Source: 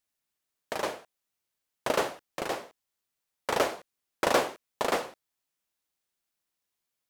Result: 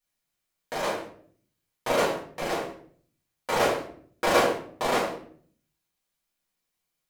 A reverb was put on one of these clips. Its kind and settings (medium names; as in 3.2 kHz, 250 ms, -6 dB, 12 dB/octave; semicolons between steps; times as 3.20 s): simulated room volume 62 m³, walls mixed, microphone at 1.8 m; trim -5 dB